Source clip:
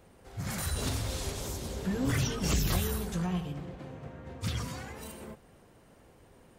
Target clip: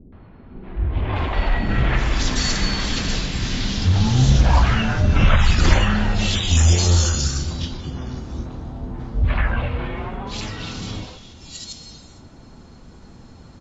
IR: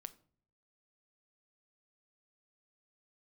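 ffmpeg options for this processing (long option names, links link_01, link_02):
-filter_complex "[0:a]acrossover=split=930|5700[link_01][link_02][link_03];[link_02]adelay=60[link_04];[link_03]adelay=560[link_05];[link_01][link_04][link_05]amix=inputs=3:normalize=0,asplit=2[link_06][link_07];[1:a]atrim=start_sample=2205[link_08];[link_07][link_08]afir=irnorm=-1:irlink=0,volume=10.5dB[link_09];[link_06][link_09]amix=inputs=2:normalize=0,asetrate=21344,aresample=44100,volume=6dB"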